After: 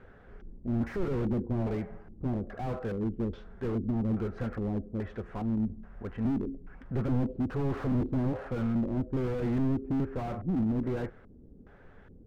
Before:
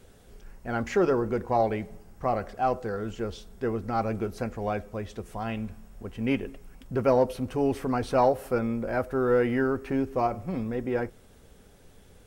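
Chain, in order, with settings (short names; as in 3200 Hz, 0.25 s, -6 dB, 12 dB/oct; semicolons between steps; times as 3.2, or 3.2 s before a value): LFO low-pass square 1.2 Hz 290–1600 Hz; 7.66–8.08 bell 1700 Hz -> 310 Hz +11.5 dB 0.88 oct; slew limiter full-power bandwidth 12 Hz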